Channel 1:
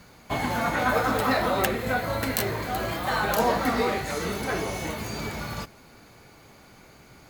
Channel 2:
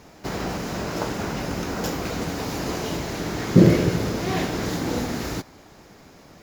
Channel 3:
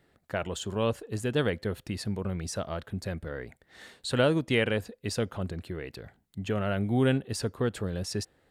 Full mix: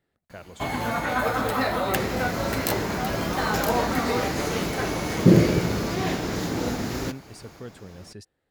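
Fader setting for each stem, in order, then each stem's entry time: −1.0, −1.5, −11.0 decibels; 0.30, 1.70, 0.00 seconds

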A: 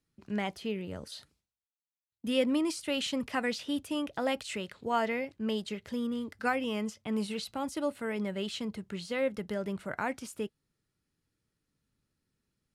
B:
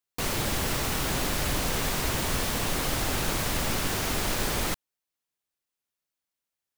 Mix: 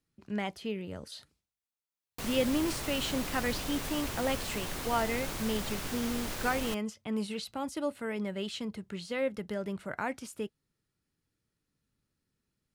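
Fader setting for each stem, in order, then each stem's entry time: −1.0, −9.5 decibels; 0.00, 2.00 seconds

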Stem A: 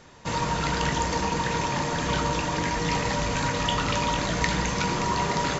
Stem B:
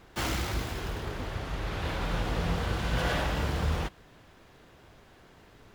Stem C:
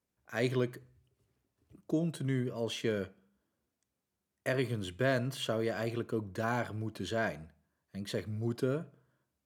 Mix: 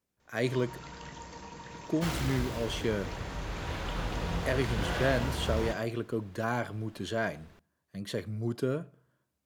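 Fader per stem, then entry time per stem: −19.5, −4.0, +1.5 decibels; 0.20, 1.85, 0.00 seconds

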